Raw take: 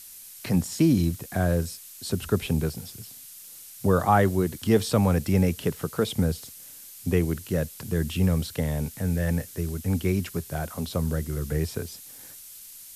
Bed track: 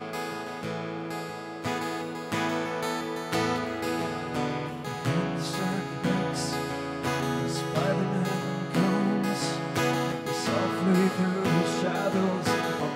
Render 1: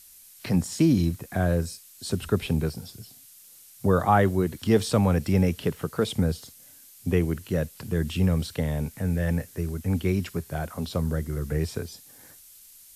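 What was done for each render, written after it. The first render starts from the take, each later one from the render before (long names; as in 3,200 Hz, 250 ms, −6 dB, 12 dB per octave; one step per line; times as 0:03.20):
noise reduction from a noise print 6 dB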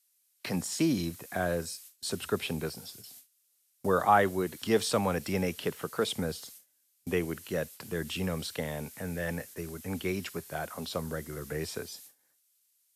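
high-pass filter 540 Hz 6 dB per octave
noise gate with hold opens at −36 dBFS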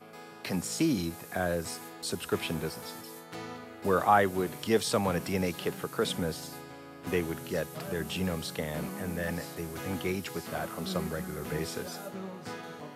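mix in bed track −14.5 dB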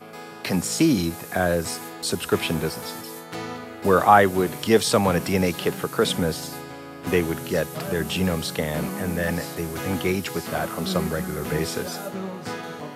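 level +8.5 dB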